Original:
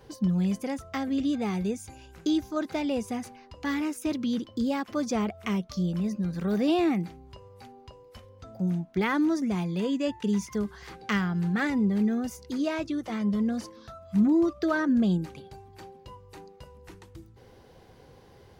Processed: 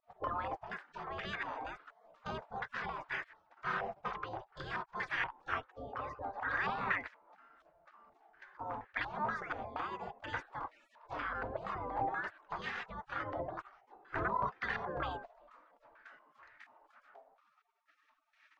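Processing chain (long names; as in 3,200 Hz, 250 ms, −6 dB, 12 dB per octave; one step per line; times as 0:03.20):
gate on every frequency bin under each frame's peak −30 dB weak
0:05.63–0:06.55: notch comb filter 340 Hz
low-pass on a step sequencer 4.2 Hz 700–1,800 Hz
level +8.5 dB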